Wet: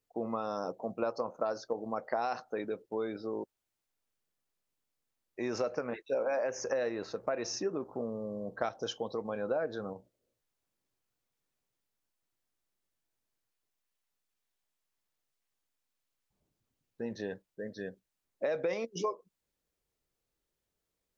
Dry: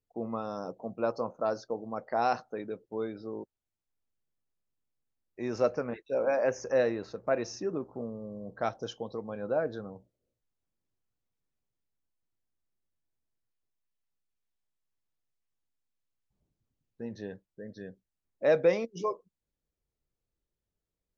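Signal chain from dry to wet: low shelf 230 Hz -10 dB; in parallel at -3 dB: level quantiser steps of 16 dB; on the sum: limiter -19 dBFS, peak gain reduction 6 dB; compressor 4:1, threshold -33 dBFS, peak gain reduction 9 dB; gain +3 dB

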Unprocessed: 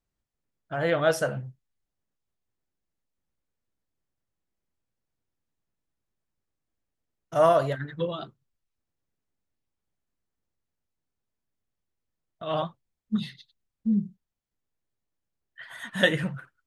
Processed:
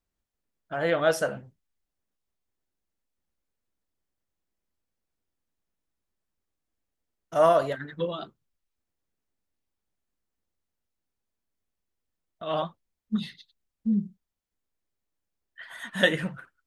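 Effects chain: bell 130 Hz -11.5 dB 0.33 oct

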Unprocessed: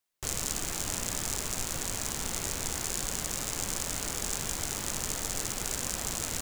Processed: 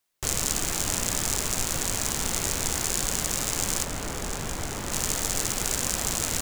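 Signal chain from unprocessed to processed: 3.84–4.92 high shelf 2700 Hz -9.5 dB; gain +6 dB

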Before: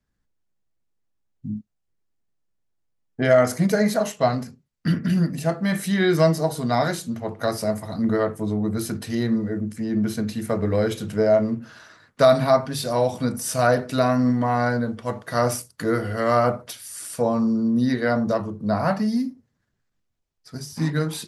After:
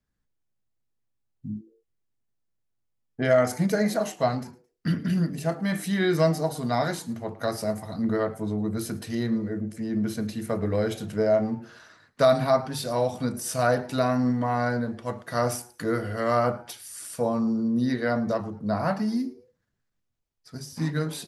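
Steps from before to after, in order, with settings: frequency-shifting echo 0.109 s, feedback 33%, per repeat +120 Hz, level -22 dB; gain -4 dB

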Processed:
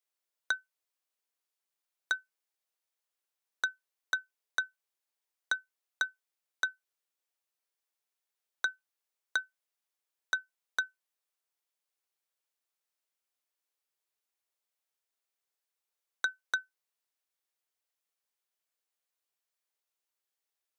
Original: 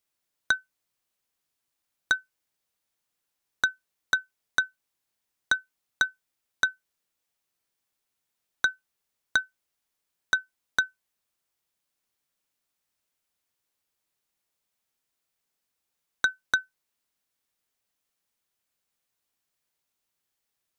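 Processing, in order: HPF 360 Hz 24 dB/oct; gain -7 dB

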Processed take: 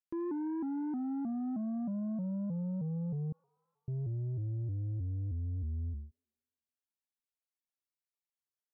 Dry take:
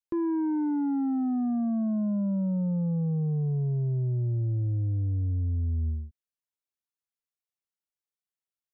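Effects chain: 3.32–3.88 steep high-pass 1000 Hz 96 dB/oct; thin delay 84 ms, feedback 71%, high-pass 1400 Hz, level -9 dB; shaped vibrato saw up 3.2 Hz, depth 160 cents; gain -8.5 dB

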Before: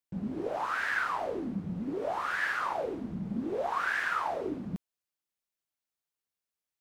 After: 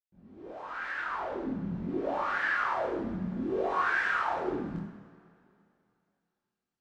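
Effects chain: opening faded in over 1.69 s; 0.61–2.68 high shelf 8900 Hz -8 dB; chorus voices 2, 0.33 Hz, delay 23 ms, depth 2 ms; air absorption 81 m; two-slope reverb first 0.84 s, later 2.7 s, from -18 dB, DRR -1 dB; gain +1.5 dB

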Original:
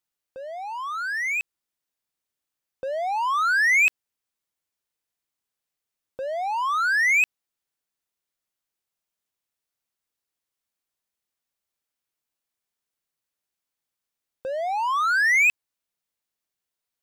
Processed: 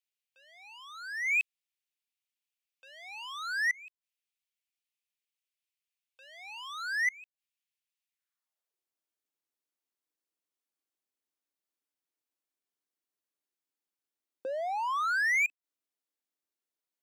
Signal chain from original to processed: high-pass sweep 2500 Hz -> 290 Hz, 8.08–8.85; flipped gate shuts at -13 dBFS, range -30 dB; gain -8 dB

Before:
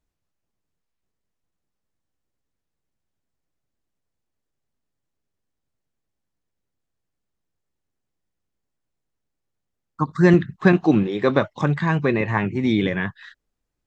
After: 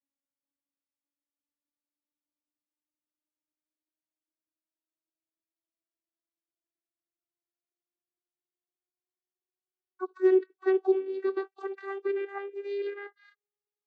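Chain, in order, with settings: vocoder on a gliding note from C#4, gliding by +7 st; gain -9 dB

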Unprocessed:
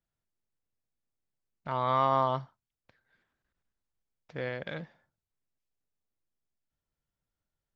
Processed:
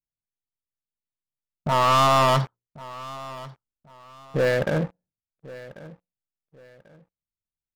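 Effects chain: notches 60/120/180/240/300/360/420/480/540 Hz; low-pass opened by the level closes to 340 Hz, open at -23.5 dBFS; 2.28–4.7 high shelf 2300 Hz +9 dB; sample leveller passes 5; feedback echo 1.091 s, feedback 29%, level -18.5 dB

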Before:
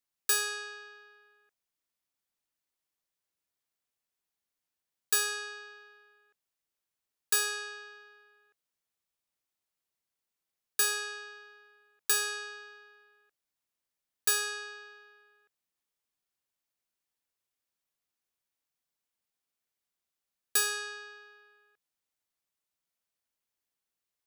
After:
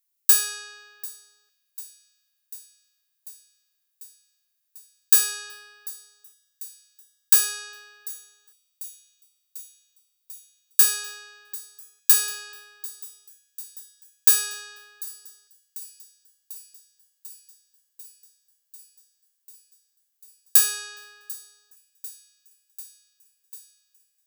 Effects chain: RIAA curve recording; on a send: thin delay 0.744 s, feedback 77%, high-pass 4100 Hz, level -20 dB; on the sum: gain -3 dB

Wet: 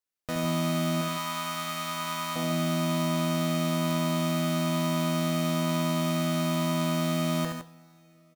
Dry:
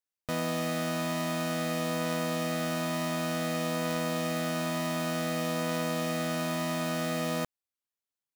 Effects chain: 1.01–2.36 resonant low shelf 690 Hz -13 dB, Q 1.5; tapped delay 72/146/163 ms -5.5/-11/-8 dB; two-slope reverb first 0.38 s, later 4.2 s, from -22 dB, DRR 10.5 dB

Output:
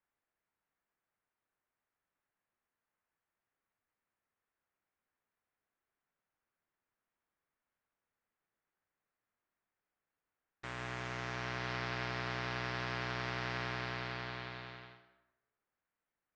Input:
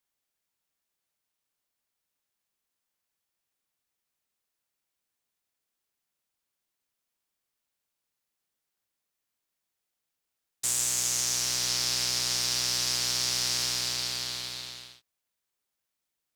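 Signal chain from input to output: ladder low-pass 2300 Hz, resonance 25%; plate-style reverb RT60 1 s, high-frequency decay 0.6×, pre-delay 90 ms, DRR 10 dB; gain +6 dB

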